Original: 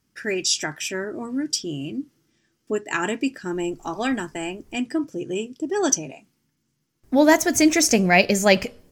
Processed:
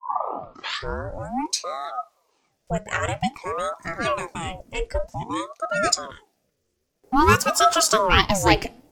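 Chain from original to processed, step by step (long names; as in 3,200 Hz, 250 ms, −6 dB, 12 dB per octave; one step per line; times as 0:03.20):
turntable start at the beginning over 1.29 s
ring modulator whose carrier an LFO sweeps 610 Hz, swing 65%, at 0.52 Hz
level +2 dB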